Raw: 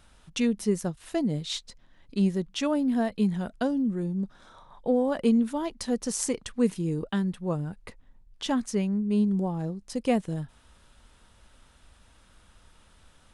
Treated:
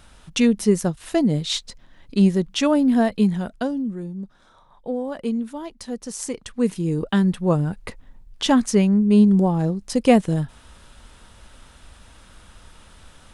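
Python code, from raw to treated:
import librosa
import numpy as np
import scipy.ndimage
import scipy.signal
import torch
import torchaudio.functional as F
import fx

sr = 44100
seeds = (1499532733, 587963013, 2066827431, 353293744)

y = fx.gain(x, sr, db=fx.line((3.09, 8.0), (4.15, -2.5), (6.09, -2.5), (7.3, 10.0)))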